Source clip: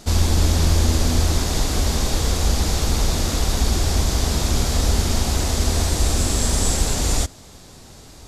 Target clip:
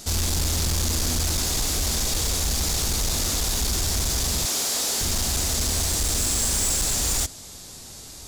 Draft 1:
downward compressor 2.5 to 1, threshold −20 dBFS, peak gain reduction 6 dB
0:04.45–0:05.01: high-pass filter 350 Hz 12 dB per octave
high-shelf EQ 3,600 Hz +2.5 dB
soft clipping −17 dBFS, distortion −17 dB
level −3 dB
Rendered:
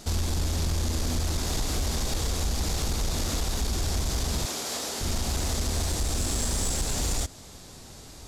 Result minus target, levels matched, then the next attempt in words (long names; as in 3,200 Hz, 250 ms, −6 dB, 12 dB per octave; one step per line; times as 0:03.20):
downward compressor: peak gain reduction +6 dB; 8,000 Hz band −3.0 dB
0:04.45–0:05.01: high-pass filter 350 Hz 12 dB per octave
high-shelf EQ 3,600 Hz +13 dB
soft clipping −17 dBFS, distortion −10 dB
level −3 dB